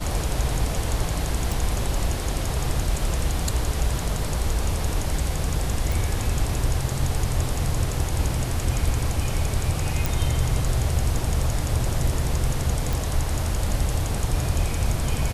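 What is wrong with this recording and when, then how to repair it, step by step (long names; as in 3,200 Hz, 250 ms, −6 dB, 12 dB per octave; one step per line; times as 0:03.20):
0:01.52: click
0:05.92: click
0:10.06: click
0:12.93: click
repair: click removal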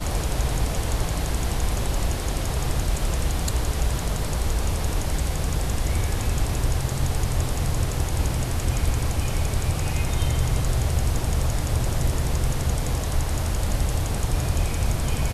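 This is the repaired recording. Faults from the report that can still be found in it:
none of them is left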